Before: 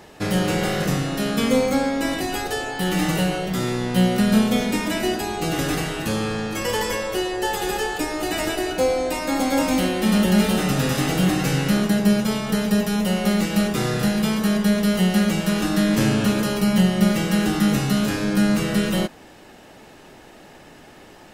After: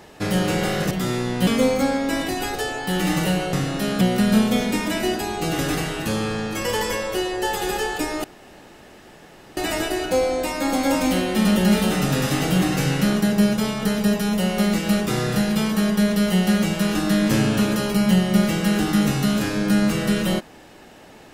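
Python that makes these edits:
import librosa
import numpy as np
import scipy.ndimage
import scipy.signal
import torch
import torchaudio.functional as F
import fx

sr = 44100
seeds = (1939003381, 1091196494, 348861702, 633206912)

y = fx.edit(x, sr, fx.swap(start_s=0.91, length_s=0.48, other_s=3.45, other_length_s=0.56),
    fx.insert_room_tone(at_s=8.24, length_s=1.33), tone=tone)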